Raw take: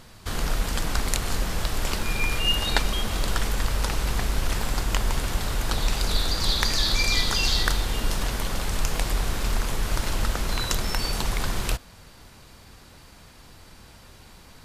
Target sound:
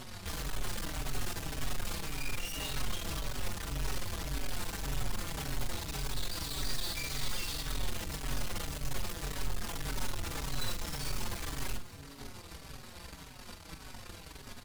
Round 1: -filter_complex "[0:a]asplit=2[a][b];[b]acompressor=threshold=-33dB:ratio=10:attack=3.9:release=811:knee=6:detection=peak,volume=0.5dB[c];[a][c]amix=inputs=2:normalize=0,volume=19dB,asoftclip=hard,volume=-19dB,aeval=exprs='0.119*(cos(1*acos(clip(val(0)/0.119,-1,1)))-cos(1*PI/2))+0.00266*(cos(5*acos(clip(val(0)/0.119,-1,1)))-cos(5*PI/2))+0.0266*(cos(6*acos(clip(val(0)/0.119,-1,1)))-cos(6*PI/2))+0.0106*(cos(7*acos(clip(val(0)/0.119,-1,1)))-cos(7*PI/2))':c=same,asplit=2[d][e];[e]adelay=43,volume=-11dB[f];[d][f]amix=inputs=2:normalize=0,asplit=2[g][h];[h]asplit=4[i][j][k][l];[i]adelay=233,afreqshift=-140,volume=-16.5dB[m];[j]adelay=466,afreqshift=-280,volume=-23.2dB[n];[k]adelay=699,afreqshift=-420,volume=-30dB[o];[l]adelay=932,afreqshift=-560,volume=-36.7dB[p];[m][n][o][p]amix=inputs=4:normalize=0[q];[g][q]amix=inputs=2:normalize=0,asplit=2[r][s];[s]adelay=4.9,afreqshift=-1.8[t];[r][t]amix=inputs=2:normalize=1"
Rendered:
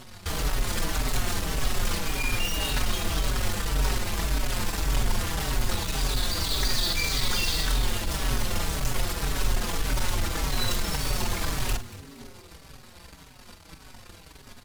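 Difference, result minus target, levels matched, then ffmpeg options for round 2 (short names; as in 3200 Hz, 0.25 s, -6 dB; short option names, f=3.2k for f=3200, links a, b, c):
overloaded stage: distortion -8 dB
-filter_complex "[0:a]asplit=2[a][b];[b]acompressor=threshold=-33dB:ratio=10:attack=3.9:release=811:knee=6:detection=peak,volume=0.5dB[c];[a][c]amix=inputs=2:normalize=0,volume=31dB,asoftclip=hard,volume=-31dB,aeval=exprs='0.119*(cos(1*acos(clip(val(0)/0.119,-1,1)))-cos(1*PI/2))+0.00266*(cos(5*acos(clip(val(0)/0.119,-1,1)))-cos(5*PI/2))+0.0266*(cos(6*acos(clip(val(0)/0.119,-1,1)))-cos(6*PI/2))+0.0106*(cos(7*acos(clip(val(0)/0.119,-1,1)))-cos(7*PI/2))':c=same,asplit=2[d][e];[e]adelay=43,volume=-11dB[f];[d][f]amix=inputs=2:normalize=0,asplit=2[g][h];[h]asplit=4[i][j][k][l];[i]adelay=233,afreqshift=-140,volume=-16.5dB[m];[j]adelay=466,afreqshift=-280,volume=-23.2dB[n];[k]adelay=699,afreqshift=-420,volume=-30dB[o];[l]adelay=932,afreqshift=-560,volume=-36.7dB[p];[m][n][o][p]amix=inputs=4:normalize=0[q];[g][q]amix=inputs=2:normalize=0,asplit=2[r][s];[s]adelay=4.9,afreqshift=-1.8[t];[r][t]amix=inputs=2:normalize=1"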